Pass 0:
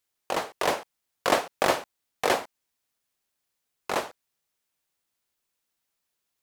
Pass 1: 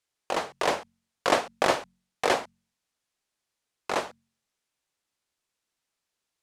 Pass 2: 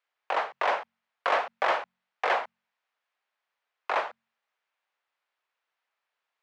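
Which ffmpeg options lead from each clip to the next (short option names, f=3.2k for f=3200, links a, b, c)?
-af "lowpass=9.1k,bandreject=f=45.54:t=h:w=4,bandreject=f=91.08:t=h:w=4,bandreject=f=136.62:t=h:w=4,bandreject=f=182.16:t=h:w=4,bandreject=f=227.7:t=h:w=4"
-filter_complex "[0:a]asoftclip=type=tanh:threshold=-22dB,highpass=110,lowpass=5.1k,acrossover=split=560 2700:gain=0.0631 1 0.178[a][b][c];[a][b][c]amix=inputs=3:normalize=0,volume=6.5dB"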